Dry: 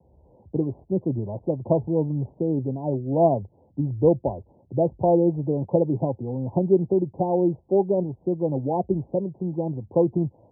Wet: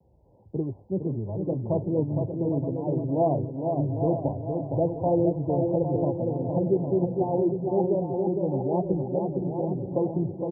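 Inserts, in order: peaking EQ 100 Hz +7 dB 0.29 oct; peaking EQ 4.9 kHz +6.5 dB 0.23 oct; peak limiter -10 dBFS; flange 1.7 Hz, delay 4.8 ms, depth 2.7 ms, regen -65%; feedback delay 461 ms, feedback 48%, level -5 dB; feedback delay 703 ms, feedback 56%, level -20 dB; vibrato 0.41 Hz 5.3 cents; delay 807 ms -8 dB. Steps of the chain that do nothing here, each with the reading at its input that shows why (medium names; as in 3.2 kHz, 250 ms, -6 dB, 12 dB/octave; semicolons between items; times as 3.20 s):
peaking EQ 4.9 kHz: input has nothing above 1 kHz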